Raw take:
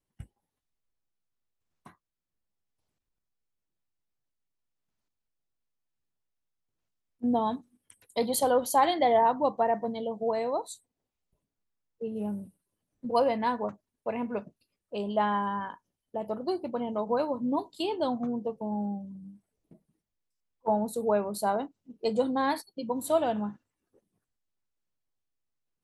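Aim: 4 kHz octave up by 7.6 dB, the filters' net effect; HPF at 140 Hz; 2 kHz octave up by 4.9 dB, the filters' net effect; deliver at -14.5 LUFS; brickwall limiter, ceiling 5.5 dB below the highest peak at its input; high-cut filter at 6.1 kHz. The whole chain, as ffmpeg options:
-af "highpass=140,lowpass=6100,equalizer=f=2000:t=o:g=4.5,equalizer=f=4000:t=o:g=8.5,volume=5.96,alimiter=limit=0.944:level=0:latency=1"

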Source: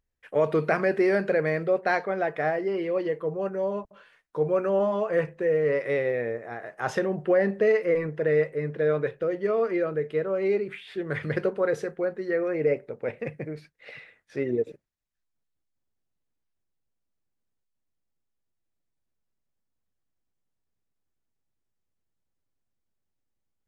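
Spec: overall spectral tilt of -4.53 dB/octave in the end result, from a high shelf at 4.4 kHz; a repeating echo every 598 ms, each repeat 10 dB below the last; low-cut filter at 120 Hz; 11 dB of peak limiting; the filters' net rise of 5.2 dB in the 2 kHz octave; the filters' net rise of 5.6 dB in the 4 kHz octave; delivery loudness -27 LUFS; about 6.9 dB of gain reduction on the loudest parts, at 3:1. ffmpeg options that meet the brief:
-af "highpass=120,equalizer=f=2000:t=o:g=5.5,equalizer=f=4000:t=o:g=9,highshelf=f=4400:g=-7,acompressor=threshold=0.0447:ratio=3,alimiter=level_in=1.33:limit=0.0631:level=0:latency=1,volume=0.75,aecho=1:1:598|1196|1794|2392:0.316|0.101|0.0324|0.0104,volume=2.51"

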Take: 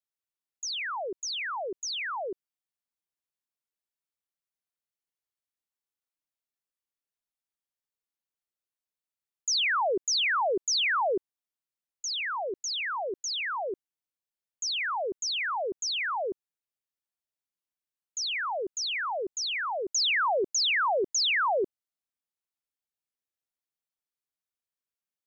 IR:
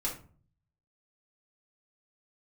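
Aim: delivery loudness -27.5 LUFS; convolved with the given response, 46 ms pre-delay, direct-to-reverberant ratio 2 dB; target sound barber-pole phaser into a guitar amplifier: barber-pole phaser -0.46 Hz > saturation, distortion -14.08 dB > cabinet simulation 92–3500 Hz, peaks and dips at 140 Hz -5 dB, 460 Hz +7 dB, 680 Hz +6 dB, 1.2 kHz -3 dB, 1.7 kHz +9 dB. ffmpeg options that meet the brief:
-filter_complex "[0:a]asplit=2[s0][s1];[1:a]atrim=start_sample=2205,adelay=46[s2];[s1][s2]afir=irnorm=-1:irlink=0,volume=0.531[s3];[s0][s3]amix=inputs=2:normalize=0,asplit=2[s4][s5];[s5]afreqshift=-0.46[s6];[s4][s6]amix=inputs=2:normalize=1,asoftclip=threshold=0.0596,highpass=92,equalizer=f=140:t=q:w=4:g=-5,equalizer=f=460:t=q:w=4:g=7,equalizer=f=680:t=q:w=4:g=6,equalizer=f=1200:t=q:w=4:g=-3,equalizer=f=1700:t=q:w=4:g=9,lowpass=f=3500:w=0.5412,lowpass=f=3500:w=1.3066,volume=1.26"

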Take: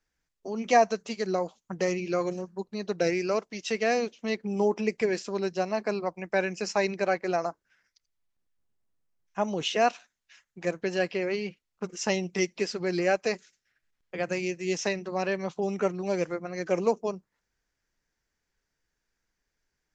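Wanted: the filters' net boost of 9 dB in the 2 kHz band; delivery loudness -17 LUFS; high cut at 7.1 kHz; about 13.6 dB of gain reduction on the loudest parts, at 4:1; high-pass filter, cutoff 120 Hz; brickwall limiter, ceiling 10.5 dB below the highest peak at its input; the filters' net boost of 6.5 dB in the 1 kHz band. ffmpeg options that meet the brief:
-af "highpass=120,lowpass=7100,equalizer=f=1000:t=o:g=8.5,equalizer=f=2000:t=o:g=8.5,acompressor=threshold=0.0501:ratio=4,volume=7.5,alimiter=limit=0.501:level=0:latency=1"

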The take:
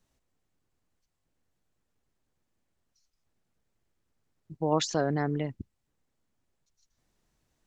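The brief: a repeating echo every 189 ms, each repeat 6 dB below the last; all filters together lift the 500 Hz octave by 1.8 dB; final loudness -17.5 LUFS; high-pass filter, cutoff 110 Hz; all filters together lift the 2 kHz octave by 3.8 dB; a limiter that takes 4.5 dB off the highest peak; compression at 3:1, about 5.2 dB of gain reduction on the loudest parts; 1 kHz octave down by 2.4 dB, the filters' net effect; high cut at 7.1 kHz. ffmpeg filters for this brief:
-af "highpass=110,lowpass=7100,equalizer=f=500:t=o:g=3.5,equalizer=f=1000:t=o:g=-6.5,equalizer=f=2000:t=o:g=7,acompressor=threshold=0.0447:ratio=3,alimiter=limit=0.0794:level=0:latency=1,aecho=1:1:189|378|567|756|945|1134:0.501|0.251|0.125|0.0626|0.0313|0.0157,volume=7.08"

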